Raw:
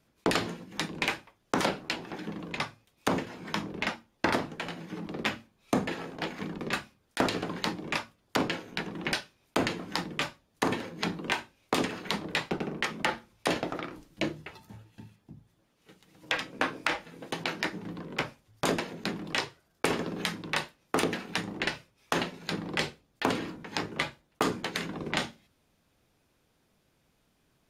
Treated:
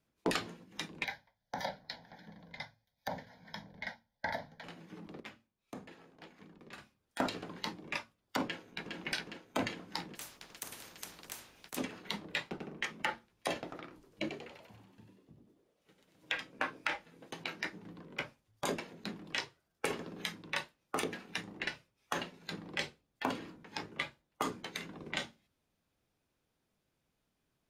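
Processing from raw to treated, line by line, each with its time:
1.04–4.64 s: static phaser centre 1.8 kHz, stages 8
5.20–6.78 s: gain -9 dB
8.44–8.96 s: echo throw 410 ms, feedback 70%, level -2.5 dB
10.15–11.77 s: spectrum-flattening compressor 4:1
13.94–16.32 s: frequency-shifting echo 94 ms, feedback 55%, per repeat +82 Hz, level -5 dB
whole clip: spectral noise reduction 6 dB; trim -5 dB

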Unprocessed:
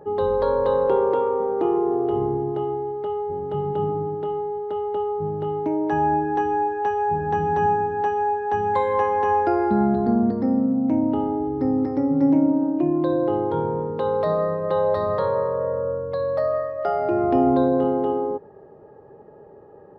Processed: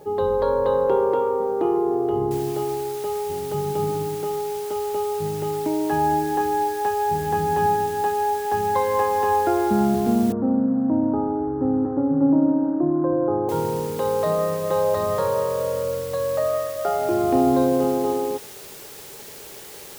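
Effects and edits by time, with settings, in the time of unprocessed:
2.31 s: noise floor step -61 dB -41 dB
10.32–13.49 s: steep low-pass 1.5 kHz 48 dB/octave

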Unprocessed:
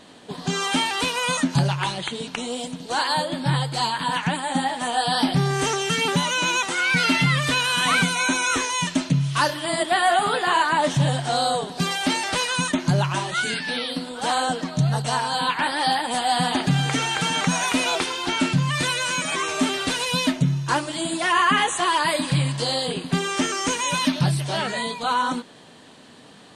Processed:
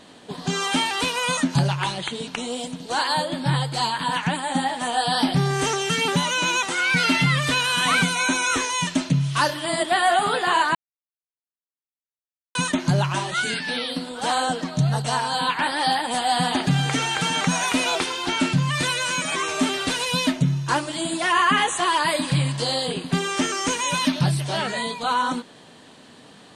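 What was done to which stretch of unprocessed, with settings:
10.75–12.55 s: mute

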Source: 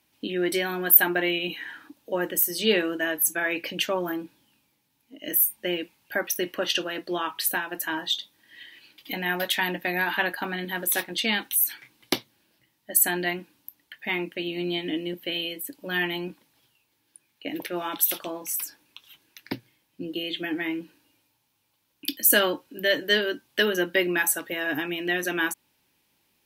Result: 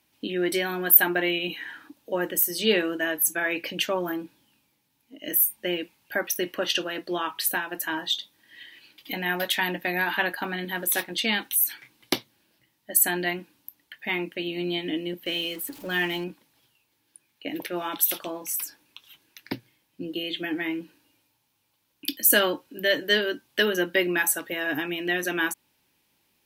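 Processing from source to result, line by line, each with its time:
15.26–16.24 s: jump at every zero crossing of -41.5 dBFS

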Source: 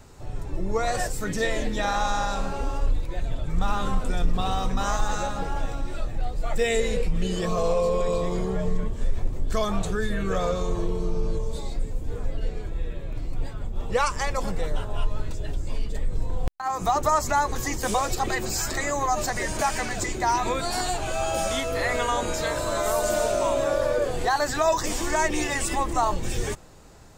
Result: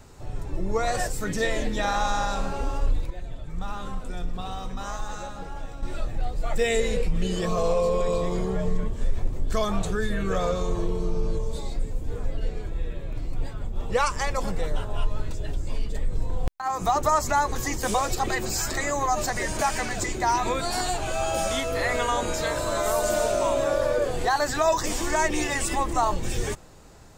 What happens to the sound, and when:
3.10–5.83 s: feedback comb 180 Hz, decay 1.5 s

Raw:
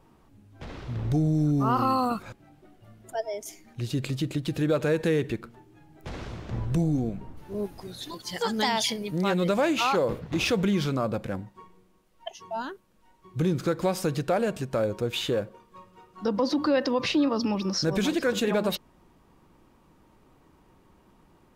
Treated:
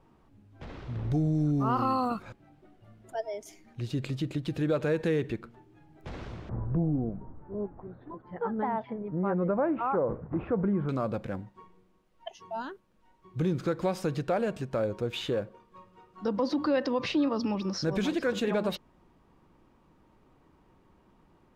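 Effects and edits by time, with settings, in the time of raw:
6.49–10.89 s: low-pass 1.4 kHz 24 dB/octave
whole clip: low-pass 3.6 kHz 6 dB/octave; trim -3 dB

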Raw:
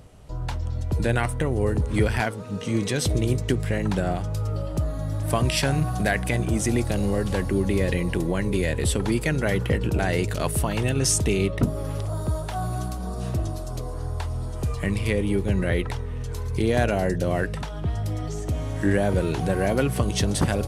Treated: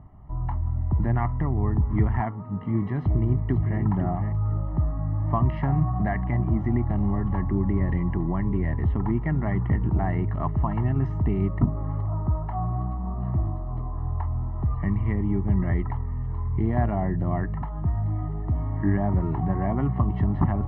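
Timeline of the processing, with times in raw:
2.98–3.81 s: echo throw 510 ms, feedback 15%, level -8 dB
whole clip: low-pass 1.5 kHz 24 dB/octave; comb 1 ms, depth 91%; trim -3.5 dB

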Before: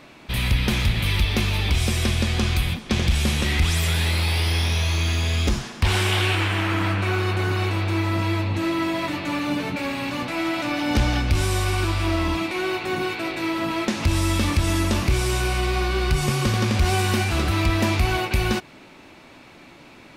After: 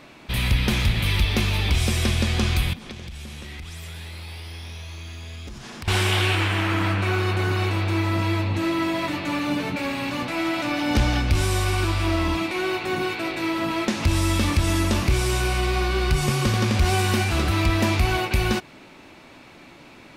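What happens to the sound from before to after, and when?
2.73–5.88 s: compression 12:1, threshold -33 dBFS

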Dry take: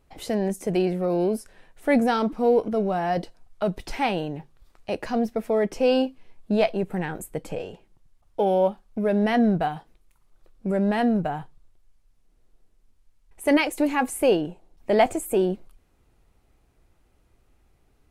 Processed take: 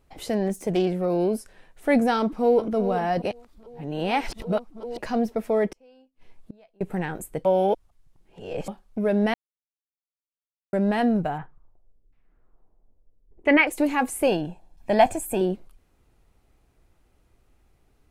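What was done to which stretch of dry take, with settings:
0.43–0.96 s: self-modulated delay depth 0.087 ms
2.19–2.65 s: echo throw 390 ms, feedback 65%, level -11.5 dB
3.22–4.98 s: reverse
5.69–6.81 s: inverted gate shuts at -28 dBFS, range -34 dB
7.45–8.68 s: reverse
9.34–10.73 s: mute
11.37–13.66 s: LFO low-pass saw down 1.5 Hz -> 0.48 Hz 330–2500 Hz
14.27–15.41 s: comb 1.2 ms, depth 52%

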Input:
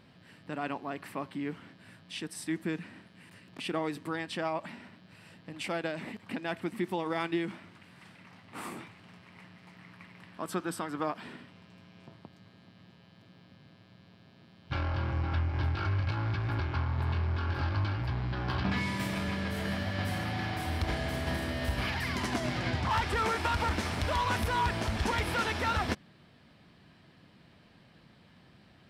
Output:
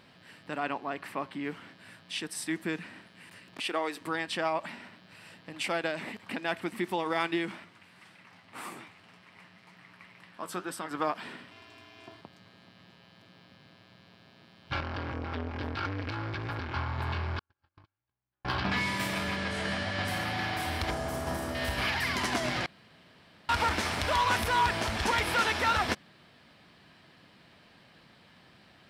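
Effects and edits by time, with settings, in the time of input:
0.60–1.44 s: treble shelf 5.8 kHz -7 dB
3.60–4.01 s: high-pass 340 Hz
7.64–10.91 s: flange 1.9 Hz, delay 4.8 ms, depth 8.2 ms, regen +62%
11.51–12.21 s: comb 2.9 ms, depth 98%
14.80–16.76 s: transformer saturation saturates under 350 Hz
17.39–18.45 s: gate -25 dBFS, range -57 dB
19.36–20.08 s: steep low-pass 10 kHz
20.90–21.55 s: high-order bell 2.8 kHz -10 dB
22.66–23.49 s: room tone
whole clip: bass shelf 350 Hz -9.5 dB; trim +5 dB

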